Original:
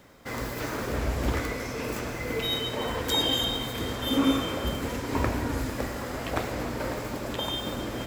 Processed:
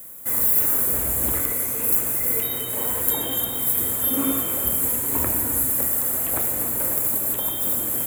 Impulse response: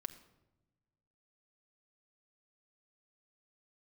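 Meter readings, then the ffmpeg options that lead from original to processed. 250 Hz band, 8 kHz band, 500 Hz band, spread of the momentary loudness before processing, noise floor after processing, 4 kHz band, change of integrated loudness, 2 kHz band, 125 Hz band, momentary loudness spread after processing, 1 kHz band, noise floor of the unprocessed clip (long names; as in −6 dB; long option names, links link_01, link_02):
−2.0 dB, +17.5 dB, −2.0 dB, 8 LU, −28 dBFS, −7.0 dB, +9.5 dB, −2.5 dB, −3.0 dB, 4 LU, −2.0 dB, −35 dBFS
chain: -filter_complex "[0:a]acrossover=split=2700[link_01][link_02];[link_02]acompressor=threshold=-40dB:ratio=4:attack=1:release=60[link_03];[link_01][link_03]amix=inputs=2:normalize=0,highpass=63,aexciter=amount=14.2:drive=10:freq=8200,volume=-2dB"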